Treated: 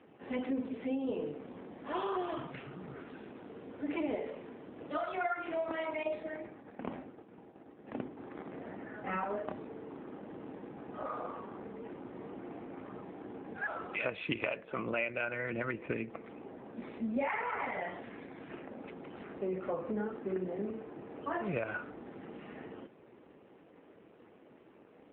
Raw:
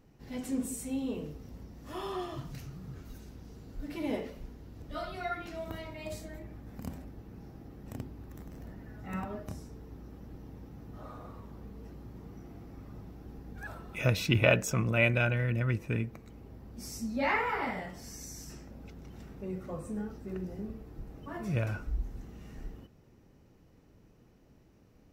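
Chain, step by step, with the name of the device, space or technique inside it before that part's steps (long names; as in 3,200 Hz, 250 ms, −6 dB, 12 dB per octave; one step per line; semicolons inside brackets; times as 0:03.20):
0:06.03–0:08.17: downward expander −40 dBFS
voicemail (band-pass filter 370–2,800 Hz; downward compressor 8 to 1, threshold −42 dBFS, peak gain reduction 21.5 dB; level +11.5 dB; AMR narrowband 7.4 kbit/s 8,000 Hz)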